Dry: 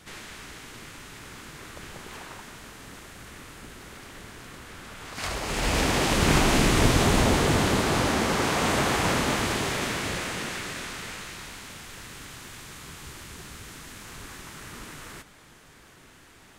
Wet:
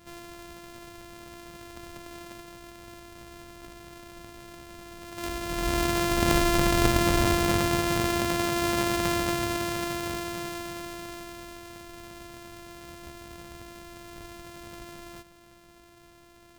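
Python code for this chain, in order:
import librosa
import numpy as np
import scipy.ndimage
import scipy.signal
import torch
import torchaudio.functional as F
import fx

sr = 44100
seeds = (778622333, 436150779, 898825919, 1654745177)

y = np.r_[np.sort(x[:len(x) // 128 * 128].reshape(-1, 128), axis=1).ravel(), x[len(x) // 128 * 128:]]
y = y * 10.0 ** (-2.0 / 20.0)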